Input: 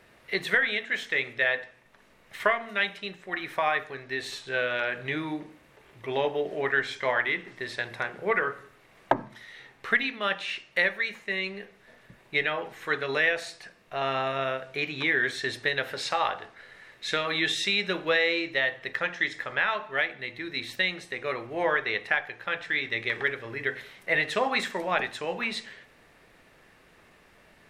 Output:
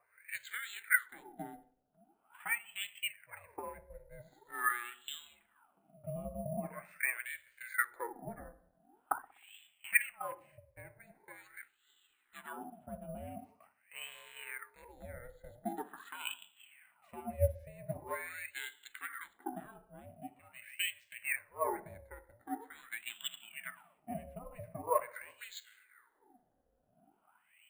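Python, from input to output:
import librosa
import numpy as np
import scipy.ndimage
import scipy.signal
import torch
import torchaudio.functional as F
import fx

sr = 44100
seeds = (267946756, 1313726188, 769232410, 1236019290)

p1 = fx.spec_ripple(x, sr, per_octave=0.75, drift_hz=-0.28, depth_db=19)
p2 = fx.dynamic_eq(p1, sr, hz=5700.0, q=0.83, threshold_db=-38.0, ratio=4.0, max_db=-4)
p3 = fx.wah_lfo(p2, sr, hz=0.44, low_hz=290.0, high_hz=3200.0, q=16.0)
p4 = p3 * np.sin(2.0 * np.pi * 240.0 * np.arange(len(p3)) / sr)
p5 = np.repeat(scipy.signal.resample_poly(p4, 1, 4), 4)[:len(p4)]
p6 = p5 + fx.echo_wet_lowpass(p5, sr, ms=62, feedback_pct=49, hz=860.0, wet_db=-16.0, dry=0)
y = p6 * 10.0 ** (3.5 / 20.0)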